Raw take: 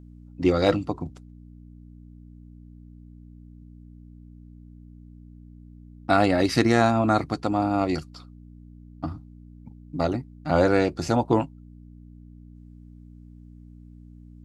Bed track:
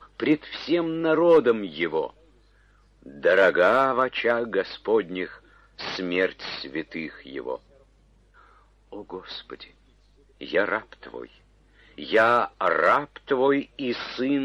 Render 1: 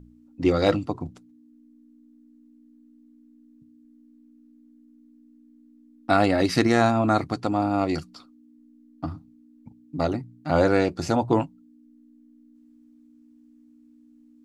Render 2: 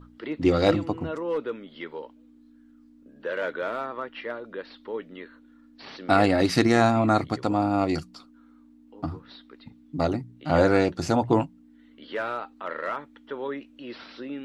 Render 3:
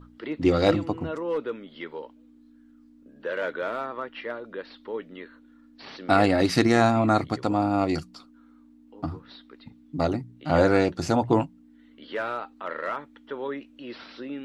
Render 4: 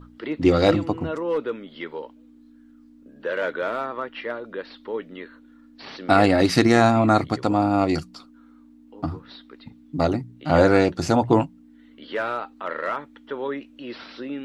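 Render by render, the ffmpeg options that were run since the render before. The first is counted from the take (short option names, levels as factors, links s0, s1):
-af "bandreject=f=60:t=h:w=4,bandreject=f=120:t=h:w=4,bandreject=f=180:t=h:w=4"
-filter_complex "[1:a]volume=0.266[s0];[0:a][s0]amix=inputs=2:normalize=0"
-af anull
-af "volume=1.5,alimiter=limit=0.708:level=0:latency=1"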